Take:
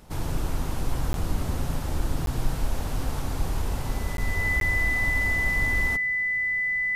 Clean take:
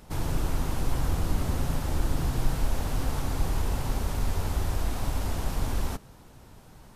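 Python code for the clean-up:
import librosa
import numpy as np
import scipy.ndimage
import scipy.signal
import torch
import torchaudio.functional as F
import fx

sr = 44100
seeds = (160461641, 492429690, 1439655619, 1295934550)

y = fx.fix_declick_ar(x, sr, threshold=6.5)
y = fx.notch(y, sr, hz=2000.0, q=30.0)
y = fx.fix_interpolate(y, sr, at_s=(1.13, 2.26, 4.17, 4.6), length_ms=12.0)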